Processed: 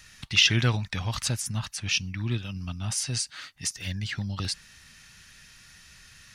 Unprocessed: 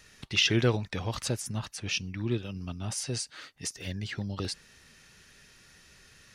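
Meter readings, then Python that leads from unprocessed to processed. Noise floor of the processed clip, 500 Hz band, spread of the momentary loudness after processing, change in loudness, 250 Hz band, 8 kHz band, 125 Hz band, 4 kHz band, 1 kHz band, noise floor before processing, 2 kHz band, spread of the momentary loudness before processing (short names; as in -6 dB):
-53 dBFS, -6.5 dB, 13 LU, +4.0 dB, -1.0 dB, +5.5 dB, +4.0 dB, +5.0 dB, +2.0 dB, -58 dBFS, +5.0 dB, 13 LU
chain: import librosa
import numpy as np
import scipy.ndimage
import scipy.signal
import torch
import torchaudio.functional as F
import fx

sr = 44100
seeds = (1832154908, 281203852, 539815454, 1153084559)

y = fx.peak_eq(x, sr, hz=420.0, db=-14.0, octaves=1.4)
y = y * 10.0 ** (5.5 / 20.0)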